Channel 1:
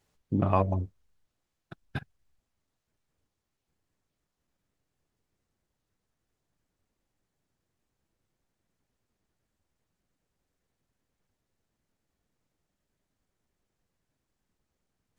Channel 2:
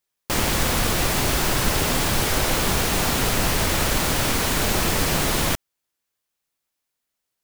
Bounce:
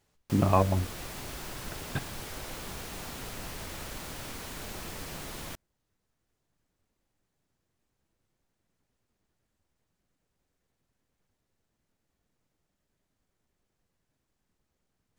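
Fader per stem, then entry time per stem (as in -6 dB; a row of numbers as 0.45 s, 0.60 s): +1.5 dB, -19.0 dB; 0.00 s, 0.00 s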